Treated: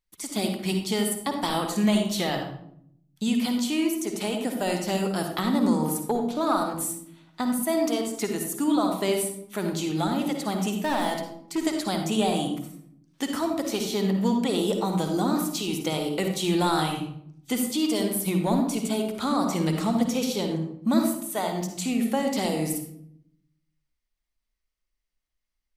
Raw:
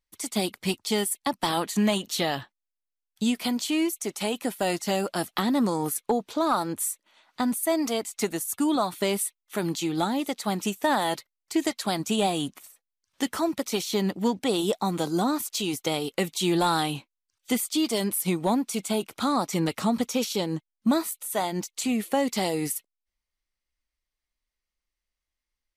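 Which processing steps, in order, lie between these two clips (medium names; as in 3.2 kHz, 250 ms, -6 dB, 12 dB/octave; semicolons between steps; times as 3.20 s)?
10.76–11.58 s: hard clipper -20.5 dBFS, distortion -25 dB; on a send: reverberation RT60 0.70 s, pre-delay 46 ms, DRR 4 dB; on the sum: trim -2 dB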